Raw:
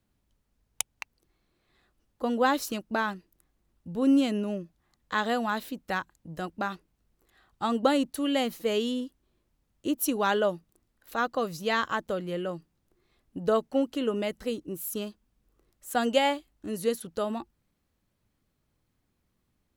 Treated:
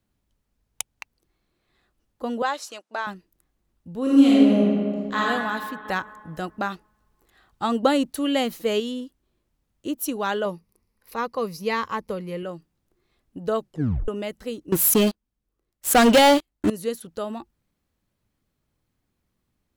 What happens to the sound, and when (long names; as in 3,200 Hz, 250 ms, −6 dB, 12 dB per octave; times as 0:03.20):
0:02.42–0:03.07: Chebyshev band-pass filter 640–7,900 Hz
0:04.02–0:05.20: thrown reverb, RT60 2.1 s, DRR −7.5 dB
0:05.85–0:08.80: clip gain +4 dB
0:10.45–0:12.43: EQ curve with evenly spaced ripples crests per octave 0.86, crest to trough 9 dB
0:13.59: tape stop 0.49 s
0:14.72–0:16.70: leveller curve on the samples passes 5